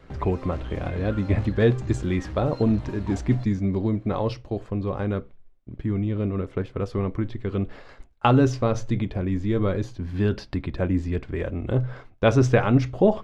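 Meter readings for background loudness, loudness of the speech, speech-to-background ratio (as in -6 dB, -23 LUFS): -37.5 LUFS, -25.0 LUFS, 12.5 dB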